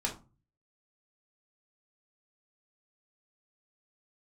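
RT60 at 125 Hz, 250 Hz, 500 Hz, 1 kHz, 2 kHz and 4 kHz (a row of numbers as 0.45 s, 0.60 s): 0.70 s, 0.45 s, 0.30 s, 0.30 s, 0.20 s, 0.20 s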